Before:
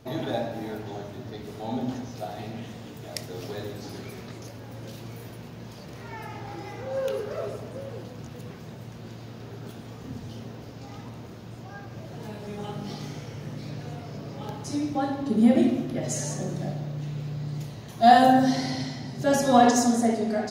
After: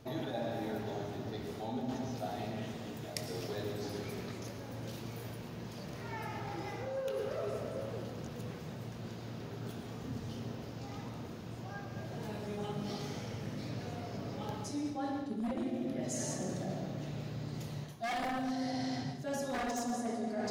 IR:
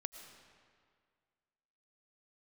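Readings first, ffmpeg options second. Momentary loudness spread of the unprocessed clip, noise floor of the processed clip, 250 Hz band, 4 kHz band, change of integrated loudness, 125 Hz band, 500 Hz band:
22 LU, −45 dBFS, −12.0 dB, −9.0 dB, −13.5 dB, −7.0 dB, −10.5 dB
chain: -filter_complex "[1:a]atrim=start_sample=2205[link_01];[0:a][link_01]afir=irnorm=-1:irlink=0,aeval=exprs='0.141*(abs(mod(val(0)/0.141+3,4)-2)-1)':channel_layout=same,areverse,acompressor=threshold=-33dB:ratio=16,areverse"

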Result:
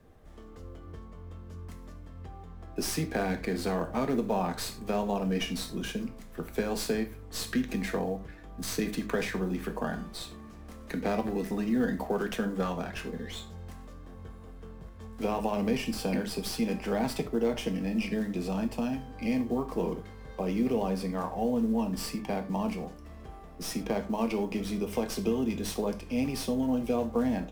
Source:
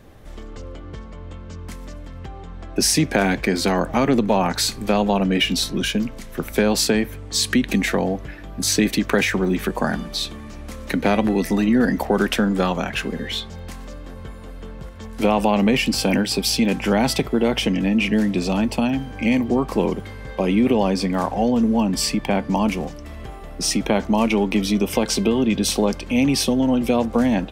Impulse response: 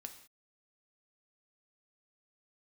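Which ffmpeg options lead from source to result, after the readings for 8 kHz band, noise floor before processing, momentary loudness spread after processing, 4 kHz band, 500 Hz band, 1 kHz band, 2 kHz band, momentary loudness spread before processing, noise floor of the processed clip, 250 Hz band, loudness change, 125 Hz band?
−15.5 dB, −36 dBFS, 18 LU, −16.0 dB, −9.5 dB, −11.0 dB, −13.5 dB, 19 LU, −47 dBFS, −11.0 dB, −11.5 dB, −10.5 dB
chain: -filter_complex "[0:a]acrossover=split=160|1700[link_01][link_02][link_03];[link_02]acrusher=bits=8:mode=log:mix=0:aa=0.000001[link_04];[link_03]aeval=exprs='max(val(0),0)':channel_layout=same[link_05];[link_01][link_04][link_05]amix=inputs=3:normalize=0[link_06];[1:a]atrim=start_sample=2205,asetrate=83790,aresample=44100[link_07];[link_06][link_07]afir=irnorm=-1:irlink=0"

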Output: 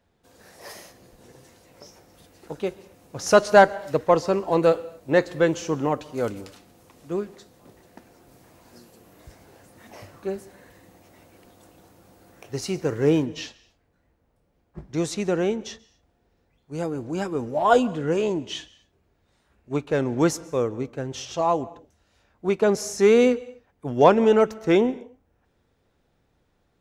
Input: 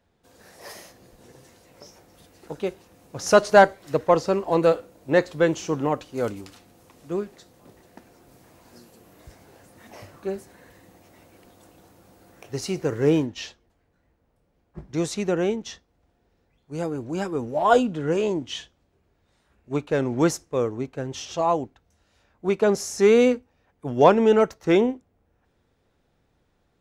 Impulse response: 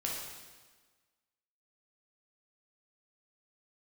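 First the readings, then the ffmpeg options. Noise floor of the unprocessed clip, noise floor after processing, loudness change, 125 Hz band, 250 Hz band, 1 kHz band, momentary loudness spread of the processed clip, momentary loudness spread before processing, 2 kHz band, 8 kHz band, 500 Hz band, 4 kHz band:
−69 dBFS, −69 dBFS, 0.0 dB, 0.0 dB, 0.0 dB, 0.0 dB, 19 LU, 19 LU, 0.0 dB, 0.0 dB, 0.0 dB, 0.0 dB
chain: -filter_complex "[0:a]asplit=2[link_01][link_02];[1:a]atrim=start_sample=2205,atrim=end_sample=6174,adelay=133[link_03];[link_02][link_03]afir=irnorm=-1:irlink=0,volume=-23.5dB[link_04];[link_01][link_04]amix=inputs=2:normalize=0"

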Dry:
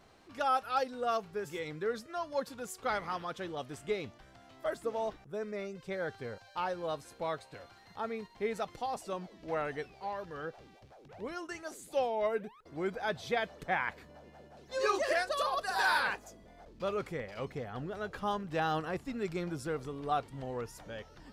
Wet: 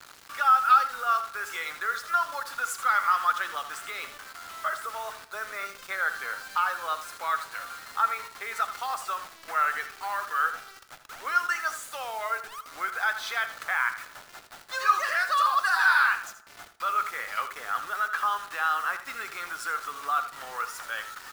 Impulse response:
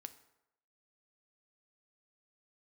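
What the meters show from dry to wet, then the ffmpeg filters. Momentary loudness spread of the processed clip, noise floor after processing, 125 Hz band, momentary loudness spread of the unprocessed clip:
14 LU, −50 dBFS, below −15 dB, 12 LU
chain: -filter_complex "[0:a]acontrast=38,alimiter=level_in=1dB:limit=-24dB:level=0:latency=1:release=148,volume=-1dB,highpass=frequency=1300:width_type=q:width=4.6,acrusher=bits=7:mix=0:aa=0.000001,aecho=1:1:81:0.266,asplit=2[link_01][link_02];[1:a]atrim=start_sample=2205[link_03];[link_02][link_03]afir=irnorm=-1:irlink=0,volume=14.5dB[link_04];[link_01][link_04]amix=inputs=2:normalize=0,volume=-7.5dB"

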